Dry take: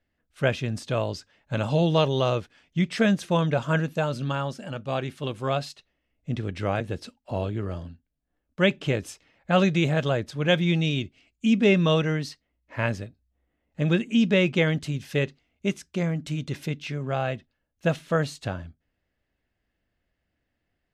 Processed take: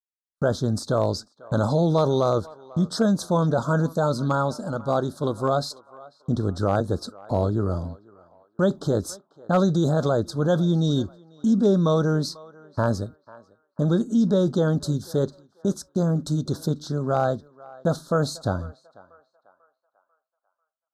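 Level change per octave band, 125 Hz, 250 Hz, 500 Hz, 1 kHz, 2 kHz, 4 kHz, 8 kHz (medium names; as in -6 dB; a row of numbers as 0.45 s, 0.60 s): +2.5 dB, +2.5 dB, +3.0 dB, +3.5 dB, -7.5 dB, -4.0 dB, +5.5 dB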